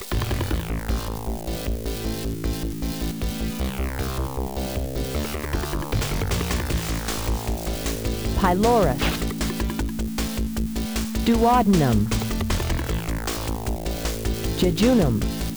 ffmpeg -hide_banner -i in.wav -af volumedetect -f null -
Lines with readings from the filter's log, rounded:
mean_volume: -23.4 dB
max_volume: -9.7 dB